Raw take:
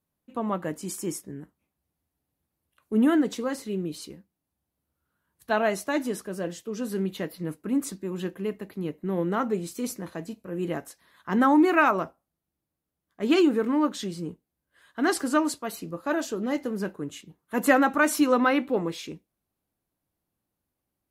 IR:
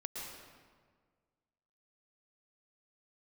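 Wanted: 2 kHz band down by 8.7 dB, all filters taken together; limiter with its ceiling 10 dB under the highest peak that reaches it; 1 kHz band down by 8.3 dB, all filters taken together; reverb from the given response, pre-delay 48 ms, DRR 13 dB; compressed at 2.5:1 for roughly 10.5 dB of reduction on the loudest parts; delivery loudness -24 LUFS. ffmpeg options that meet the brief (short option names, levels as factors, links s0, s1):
-filter_complex "[0:a]equalizer=f=1000:t=o:g=-9,equalizer=f=2000:t=o:g=-8,acompressor=threshold=0.02:ratio=2.5,alimiter=level_in=2.37:limit=0.0631:level=0:latency=1,volume=0.422,asplit=2[s0][s1];[1:a]atrim=start_sample=2205,adelay=48[s2];[s1][s2]afir=irnorm=-1:irlink=0,volume=0.224[s3];[s0][s3]amix=inputs=2:normalize=0,volume=6.68"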